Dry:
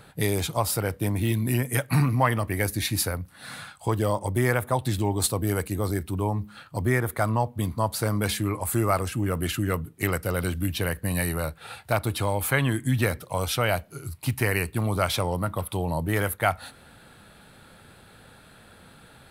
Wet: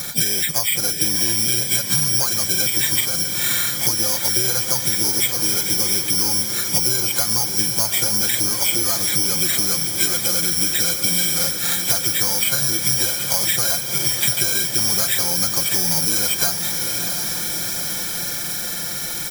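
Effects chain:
hearing-aid frequency compression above 1,400 Hz 4 to 1
downward compressor 16 to 1, threshold −33 dBFS, peak gain reduction 19.5 dB
bad sample-rate conversion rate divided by 8×, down filtered, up zero stuff
comb filter 5.7 ms, depth 74%
feedback delay with all-pass diffusion 689 ms, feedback 73%, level −8.5 dB
pitch-shifted copies added +7 semitones −11 dB
multiband upward and downward compressor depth 40%
level +5.5 dB

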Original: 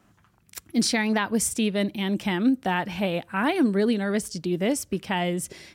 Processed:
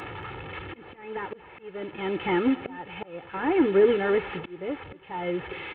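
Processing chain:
linear delta modulator 16 kbit/s, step −34.5 dBFS
high-pass filter 130 Hz 6 dB per octave
comb filter 2.3 ms, depth 77%
volume swells 675 ms
on a send: single-tap delay 230 ms −21.5 dB
on the sum: level +3 dB

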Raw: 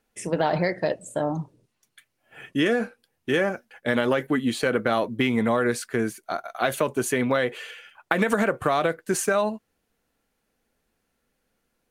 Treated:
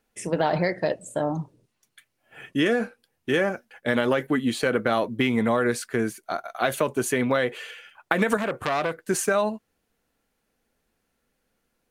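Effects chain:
0:08.37–0:09.03: saturating transformer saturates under 2,200 Hz

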